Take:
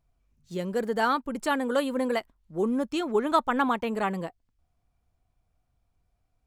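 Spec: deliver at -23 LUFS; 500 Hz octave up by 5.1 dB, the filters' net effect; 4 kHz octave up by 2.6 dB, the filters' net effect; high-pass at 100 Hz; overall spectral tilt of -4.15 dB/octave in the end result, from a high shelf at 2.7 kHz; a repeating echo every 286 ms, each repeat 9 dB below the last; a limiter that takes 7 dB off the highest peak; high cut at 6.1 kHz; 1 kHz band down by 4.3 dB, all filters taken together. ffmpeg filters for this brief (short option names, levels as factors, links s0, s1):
-af "highpass=100,lowpass=6100,equalizer=f=500:t=o:g=8,equalizer=f=1000:t=o:g=-8,highshelf=f=2700:g=-4.5,equalizer=f=4000:t=o:g=8,alimiter=limit=0.133:level=0:latency=1,aecho=1:1:286|572|858|1144:0.355|0.124|0.0435|0.0152,volume=1.58"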